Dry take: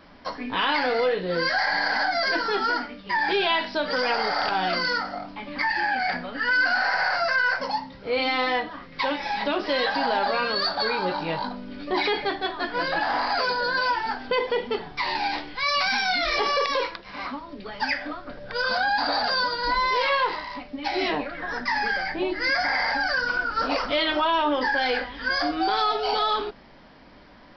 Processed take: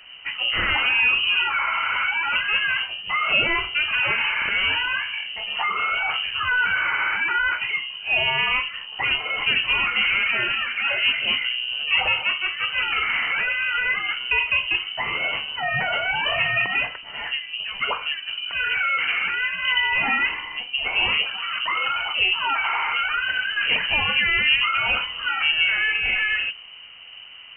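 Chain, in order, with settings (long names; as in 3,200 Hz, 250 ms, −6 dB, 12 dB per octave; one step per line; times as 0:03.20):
sub-octave generator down 1 octave, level +2 dB
low-shelf EQ 360 Hz +7 dB
voice inversion scrambler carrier 3,000 Hz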